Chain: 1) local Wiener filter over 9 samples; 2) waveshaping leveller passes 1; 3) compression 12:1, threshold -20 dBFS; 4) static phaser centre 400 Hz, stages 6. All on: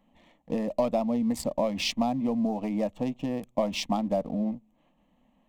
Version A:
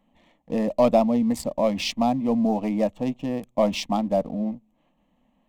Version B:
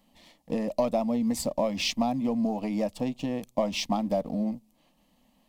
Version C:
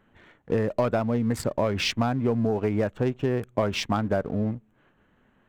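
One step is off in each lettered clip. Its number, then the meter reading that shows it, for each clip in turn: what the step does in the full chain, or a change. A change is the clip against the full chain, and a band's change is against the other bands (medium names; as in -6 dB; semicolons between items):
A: 3, mean gain reduction 4.0 dB; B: 1, 8 kHz band +2.5 dB; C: 4, 125 Hz band +9.0 dB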